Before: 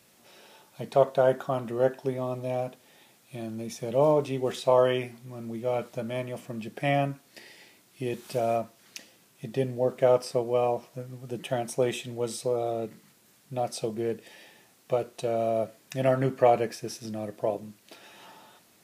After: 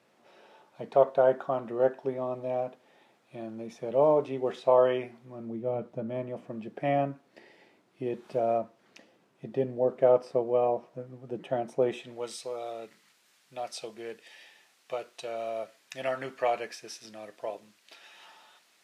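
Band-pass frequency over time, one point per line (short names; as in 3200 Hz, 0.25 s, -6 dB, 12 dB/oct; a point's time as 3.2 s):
band-pass, Q 0.52
5.24 s 690 Hz
5.78 s 210 Hz
6.52 s 500 Hz
11.86 s 500 Hz
12.36 s 2600 Hz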